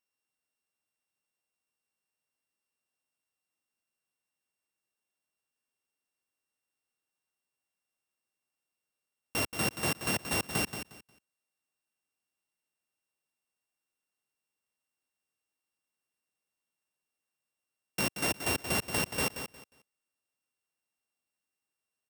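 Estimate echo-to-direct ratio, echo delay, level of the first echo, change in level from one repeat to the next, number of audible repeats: -9.0 dB, 0.179 s, -9.0 dB, -13.0 dB, 2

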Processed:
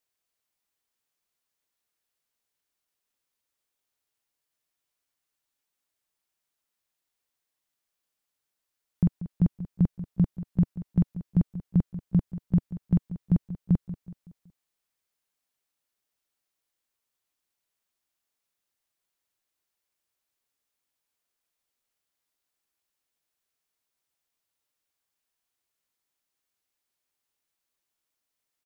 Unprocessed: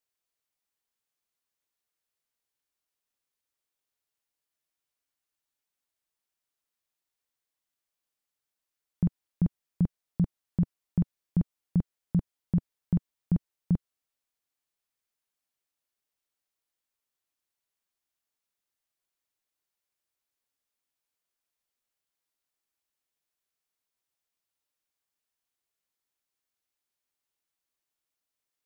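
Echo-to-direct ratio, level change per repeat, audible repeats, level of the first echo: -13.0 dB, -7.0 dB, 3, -14.0 dB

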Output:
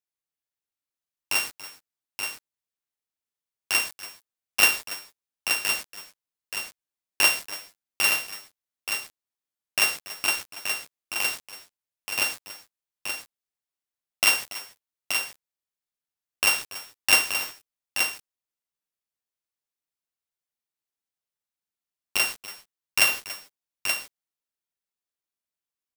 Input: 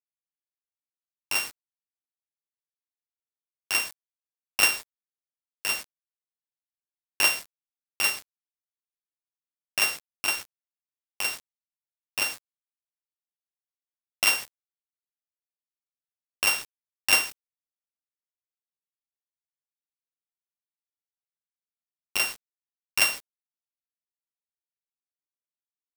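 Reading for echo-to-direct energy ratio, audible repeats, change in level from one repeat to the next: -6.0 dB, 2, no steady repeat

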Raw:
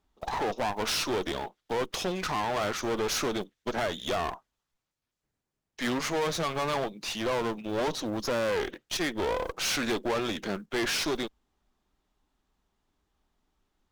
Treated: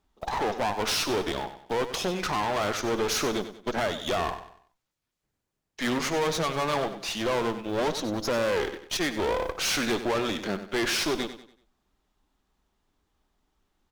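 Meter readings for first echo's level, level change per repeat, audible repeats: -11.5 dB, -8.5 dB, 3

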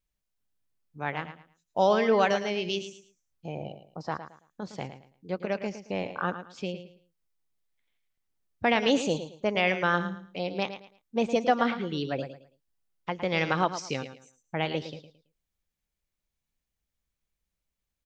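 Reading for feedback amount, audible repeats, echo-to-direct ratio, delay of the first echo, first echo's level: 26%, 3, -10.5 dB, 0.11 s, -11.0 dB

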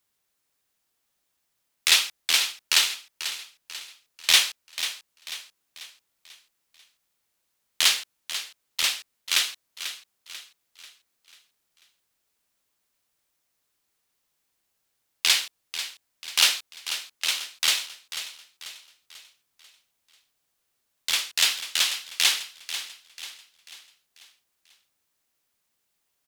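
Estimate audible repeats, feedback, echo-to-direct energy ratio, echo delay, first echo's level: 4, 45%, -10.5 dB, 0.491 s, -11.5 dB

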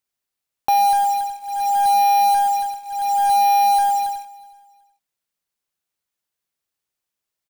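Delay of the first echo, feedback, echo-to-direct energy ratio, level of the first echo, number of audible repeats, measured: 0.371 s, 32%, -22.5 dB, -23.0 dB, 2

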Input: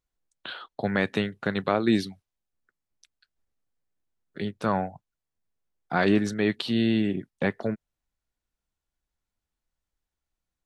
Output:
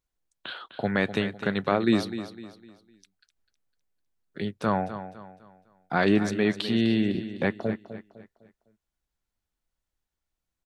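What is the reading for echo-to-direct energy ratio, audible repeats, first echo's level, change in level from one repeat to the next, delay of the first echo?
-11.5 dB, 3, -12.0 dB, -8.5 dB, 0.253 s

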